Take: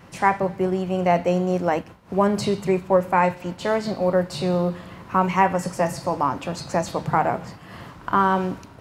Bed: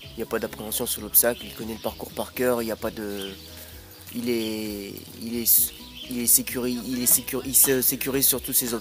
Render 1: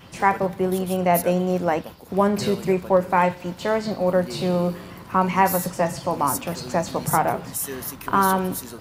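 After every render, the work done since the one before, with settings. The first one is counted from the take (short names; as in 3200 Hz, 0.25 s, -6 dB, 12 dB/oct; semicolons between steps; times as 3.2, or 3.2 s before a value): add bed -11 dB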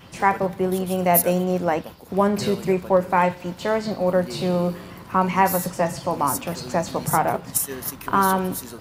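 0.97–1.44 high shelf 8200 Hz +12 dB; 7.34–7.92 transient shaper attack +10 dB, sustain -4 dB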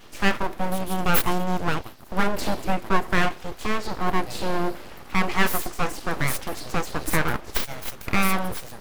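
full-wave rectifier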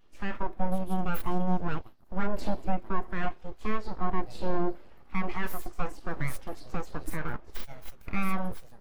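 limiter -13 dBFS, peak gain reduction 9.5 dB; spectral expander 1.5:1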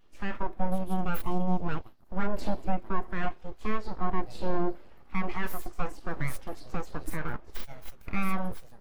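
1.22–1.69 bell 1600 Hz -12 dB 0.46 oct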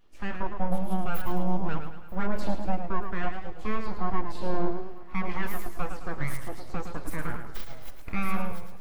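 thinning echo 0.938 s, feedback 48%, level -22 dB; warbling echo 0.108 s, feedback 45%, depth 104 cents, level -7.5 dB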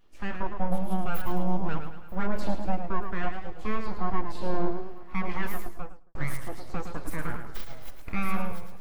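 5.5–6.15 studio fade out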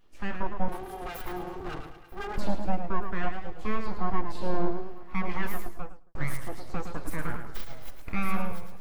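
0.68–2.38 minimum comb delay 2.5 ms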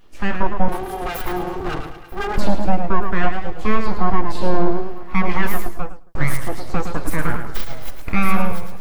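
gain +11.5 dB; limiter -2 dBFS, peak gain reduction 3 dB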